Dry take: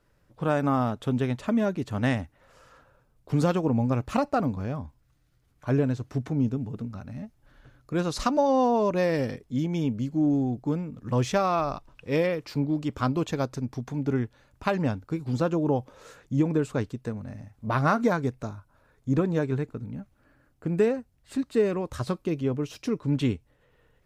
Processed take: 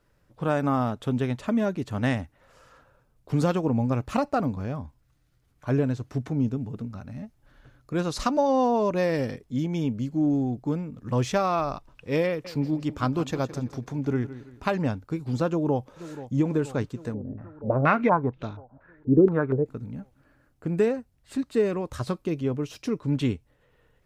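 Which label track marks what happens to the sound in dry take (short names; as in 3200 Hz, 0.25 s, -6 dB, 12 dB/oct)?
12.280000	14.760000	feedback echo 0.165 s, feedback 38%, level -14 dB
15.480000	16.370000	echo throw 0.48 s, feedback 70%, level -14 dB
17.140000	19.660000	stepped low-pass 4.2 Hz 390–3300 Hz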